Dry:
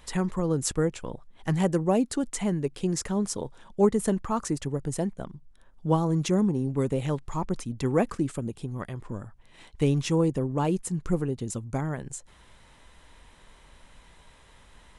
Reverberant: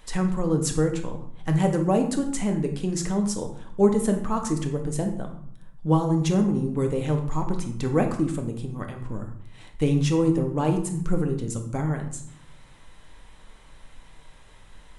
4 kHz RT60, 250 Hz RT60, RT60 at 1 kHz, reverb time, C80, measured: 0.45 s, 1.0 s, 0.65 s, 0.65 s, 11.5 dB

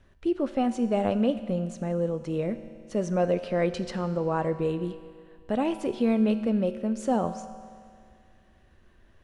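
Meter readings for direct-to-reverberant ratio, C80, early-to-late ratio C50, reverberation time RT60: 10.0 dB, 12.5 dB, 11.5 dB, 2.1 s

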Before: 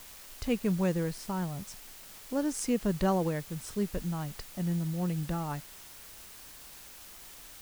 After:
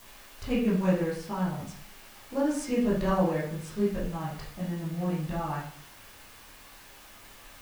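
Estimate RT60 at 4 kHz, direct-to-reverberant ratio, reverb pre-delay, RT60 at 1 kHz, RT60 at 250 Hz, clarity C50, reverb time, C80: 0.45 s, -8.0 dB, 7 ms, 0.50 s, 0.55 s, 4.0 dB, 0.50 s, 8.0 dB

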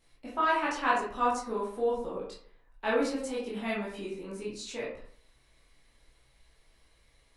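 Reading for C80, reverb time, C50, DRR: 8.0 dB, 0.55 s, 3.5 dB, -7.0 dB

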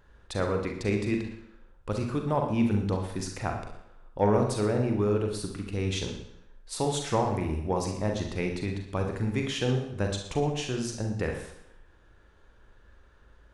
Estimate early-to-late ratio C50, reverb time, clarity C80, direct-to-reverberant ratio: 5.5 dB, 0.75 s, 9.0 dB, 2.5 dB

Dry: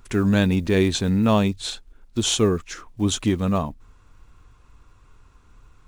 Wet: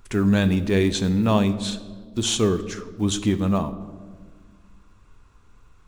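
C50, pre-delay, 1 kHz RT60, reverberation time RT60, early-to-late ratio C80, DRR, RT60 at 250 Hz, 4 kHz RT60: 13.5 dB, 5 ms, 1.3 s, 1.6 s, 15.0 dB, 11.0 dB, 2.3 s, 0.90 s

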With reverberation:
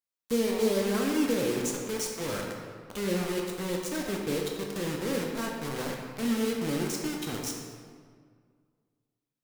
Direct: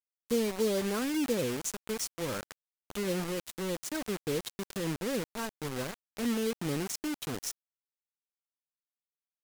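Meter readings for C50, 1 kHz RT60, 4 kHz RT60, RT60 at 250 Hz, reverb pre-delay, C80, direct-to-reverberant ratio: 2.0 dB, 1.8 s, 1.2 s, 2.1 s, 10 ms, 3.5 dB, -0.5 dB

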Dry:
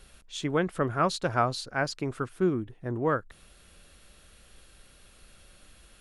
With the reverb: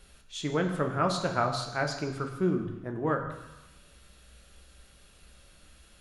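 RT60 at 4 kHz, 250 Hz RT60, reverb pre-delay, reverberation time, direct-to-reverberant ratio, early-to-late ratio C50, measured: 1.2 s, 1.1 s, 3 ms, 1.1 s, 3.5 dB, 7.5 dB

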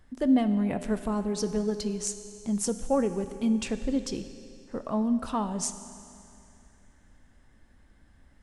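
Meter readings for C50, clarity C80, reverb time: 11.0 dB, 11.5 dB, 2.7 s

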